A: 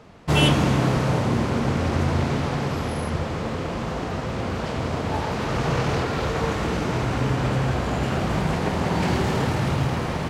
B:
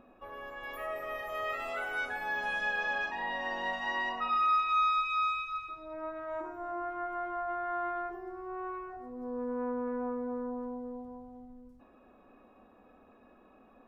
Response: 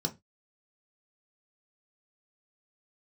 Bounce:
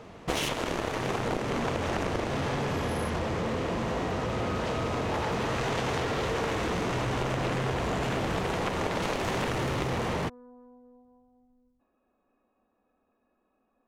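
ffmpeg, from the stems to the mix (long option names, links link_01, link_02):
-filter_complex "[0:a]aeval=exprs='0.501*(cos(1*acos(clip(val(0)/0.501,-1,1)))-cos(1*PI/2))+0.2*(cos(7*acos(clip(val(0)/0.501,-1,1)))-cos(7*PI/2))':channel_layout=same,volume=-4dB,asplit=2[link_01][link_02];[link_02]volume=-20.5dB[link_03];[1:a]volume=-14.5dB[link_04];[2:a]atrim=start_sample=2205[link_05];[link_03][link_05]afir=irnorm=-1:irlink=0[link_06];[link_01][link_04][link_06]amix=inputs=3:normalize=0,acompressor=threshold=-26dB:ratio=6"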